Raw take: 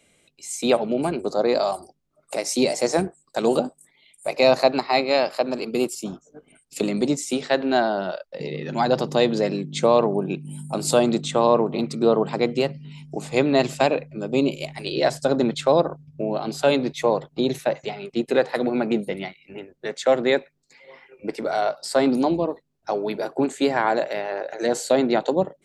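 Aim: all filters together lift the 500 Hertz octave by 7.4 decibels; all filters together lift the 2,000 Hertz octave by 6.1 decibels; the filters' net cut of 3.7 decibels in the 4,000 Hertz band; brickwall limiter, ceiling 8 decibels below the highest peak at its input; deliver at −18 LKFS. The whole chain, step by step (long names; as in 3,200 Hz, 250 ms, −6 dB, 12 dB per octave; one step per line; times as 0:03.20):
parametric band 500 Hz +8.5 dB
parametric band 2,000 Hz +9 dB
parametric band 4,000 Hz −7 dB
level +1.5 dB
brickwall limiter −5.5 dBFS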